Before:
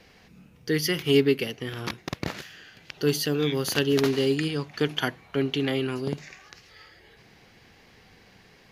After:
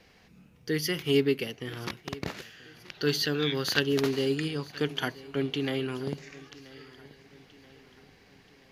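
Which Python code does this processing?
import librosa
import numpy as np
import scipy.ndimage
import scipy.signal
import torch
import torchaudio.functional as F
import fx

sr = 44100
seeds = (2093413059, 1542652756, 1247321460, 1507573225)

p1 = fx.graphic_eq_15(x, sr, hz=(1600, 4000, 10000), db=(8, 8, -7), at=(2.91, 3.8))
p2 = p1 + fx.echo_feedback(p1, sr, ms=981, feedback_pct=47, wet_db=-20, dry=0)
y = p2 * librosa.db_to_amplitude(-4.0)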